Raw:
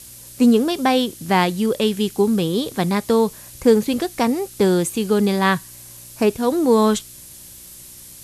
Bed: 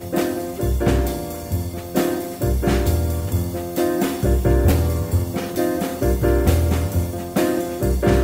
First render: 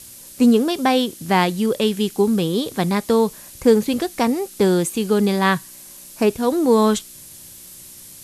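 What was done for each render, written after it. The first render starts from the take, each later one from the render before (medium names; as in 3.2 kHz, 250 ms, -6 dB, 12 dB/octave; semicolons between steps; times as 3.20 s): de-hum 60 Hz, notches 2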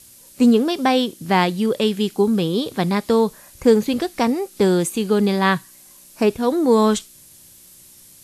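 noise print and reduce 6 dB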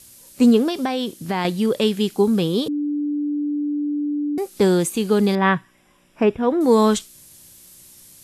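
0.68–1.45 s: compression, threshold -18 dBFS; 2.68–4.38 s: bleep 293 Hz -20 dBFS; 5.35–6.61 s: Savitzky-Golay filter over 25 samples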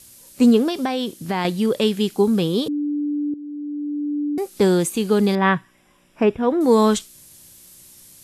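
3.34–4.20 s: fade in linear, from -13 dB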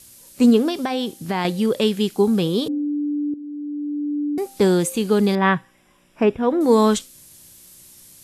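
de-hum 262.9 Hz, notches 3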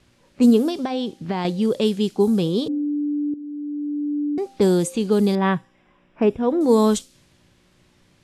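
level-controlled noise filter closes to 2.2 kHz, open at -12 dBFS; dynamic bell 1.8 kHz, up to -7 dB, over -37 dBFS, Q 0.71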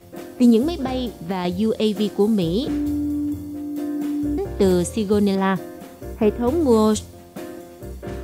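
add bed -15 dB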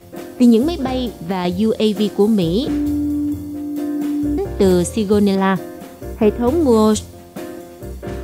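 trim +4 dB; peak limiter -3 dBFS, peak gain reduction 2.5 dB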